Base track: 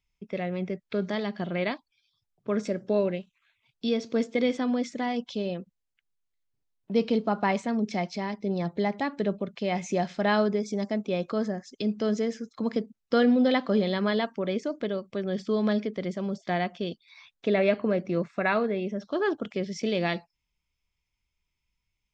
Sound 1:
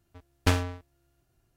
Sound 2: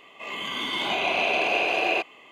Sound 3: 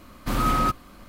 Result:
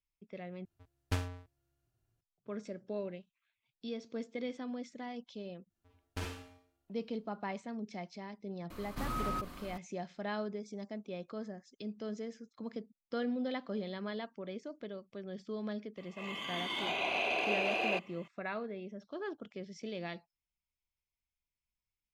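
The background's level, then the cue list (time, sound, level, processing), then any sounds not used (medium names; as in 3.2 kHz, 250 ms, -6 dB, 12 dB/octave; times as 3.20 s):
base track -14 dB
0.65 s: replace with 1 -12.5 dB + peaking EQ 110 Hz +8.5 dB 0.42 oct
5.70 s: add 1 -17.5 dB + Schroeder reverb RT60 0.55 s, combs from 32 ms, DRR -1.5 dB
8.70 s: add 3 -15 dB + level flattener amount 50%
15.97 s: add 2 -9.5 dB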